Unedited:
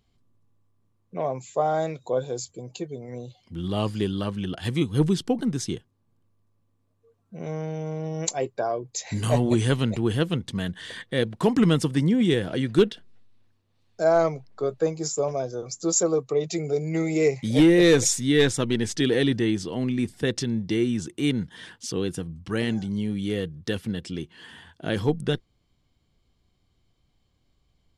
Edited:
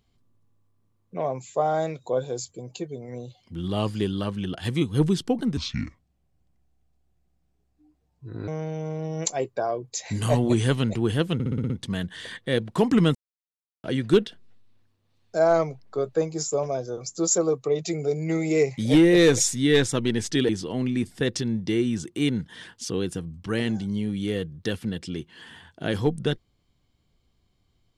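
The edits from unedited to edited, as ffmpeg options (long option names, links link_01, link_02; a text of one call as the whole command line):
ffmpeg -i in.wav -filter_complex "[0:a]asplit=12[link_01][link_02][link_03][link_04][link_05][link_06][link_07][link_08][link_09][link_10][link_11][link_12];[link_01]atrim=end=5.574[link_13];[link_02]atrim=start=5.57:end=7.49,asetpts=PTS-STARTPTS,asetrate=29106,aresample=44100[link_14];[link_03]atrim=start=7.486:end=10.412[link_15];[link_04]atrim=start=10.348:end=10.412[link_16];[link_05]atrim=start=10.348:end=10.412[link_17];[link_06]atrim=start=10.348:end=10.412[link_18];[link_07]atrim=start=10.348:end=10.412[link_19];[link_08]atrim=start=10.348:end=10.412[link_20];[link_09]atrim=start=10.348:end=11.8,asetpts=PTS-STARTPTS,afade=type=out:start_time=1.448:duration=0.004:curve=hsin[link_21];[link_10]atrim=start=11.8:end=12.49,asetpts=PTS-STARTPTS,volume=0[link_22];[link_11]atrim=start=12.49:end=19.142,asetpts=PTS-STARTPTS,afade=type=in:duration=0.004:curve=hsin[link_23];[link_12]atrim=start=19.508[link_24];[link_13][link_14]acrossfade=duration=0.004:curve1=hsin:curve2=hsin[link_25];[link_25][link_15]acrossfade=duration=0.004:curve1=hsin:curve2=hsin[link_26];[link_26][link_16]acrossfade=duration=0.004:curve1=hsin:curve2=hsin[link_27];[link_27][link_17]acrossfade=duration=0.004:curve1=hsin:curve2=hsin[link_28];[link_28][link_18]acrossfade=duration=0.004:curve1=hsin:curve2=hsin[link_29];[link_29][link_19]acrossfade=duration=0.004:curve1=hsin:curve2=hsin[link_30];[link_30][link_20]acrossfade=duration=0.004:curve1=hsin:curve2=hsin[link_31];[link_21][link_22][link_23]concat=n=3:v=0:a=1[link_32];[link_31][link_32]acrossfade=duration=0.004:curve1=hsin:curve2=hsin[link_33];[link_33][link_24]acrossfade=duration=0.004:curve1=hsin:curve2=hsin" out.wav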